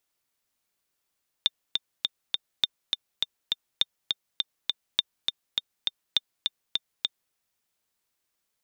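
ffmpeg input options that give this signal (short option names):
-f lavfi -i "aevalsrc='pow(10,(-7.5-4*gte(mod(t,4*60/204),60/204))/20)*sin(2*PI*3610*mod(t,60/204))*exp(-6.91*mod(t,60/204)/0.03)':d=5.88:s=44100"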